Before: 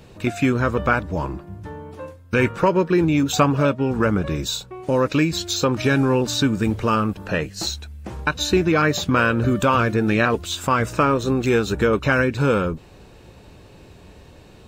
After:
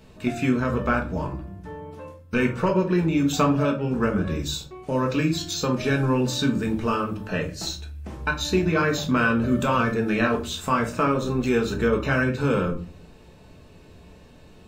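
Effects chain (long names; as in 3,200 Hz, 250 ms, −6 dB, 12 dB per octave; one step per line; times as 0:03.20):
rectangular room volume 230 cubic metres, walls furnished, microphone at 1.5 metres
level −6.5 dB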